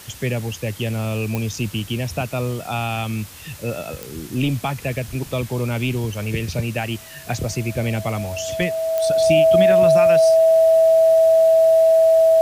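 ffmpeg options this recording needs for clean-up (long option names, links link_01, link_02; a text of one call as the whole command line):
ffmpeg -i in.wav -af "adeclick=threshold=4,bandreject=frequency=650:width=30,afftdn=noise_reduction=27:noise_floor=-36" out.wav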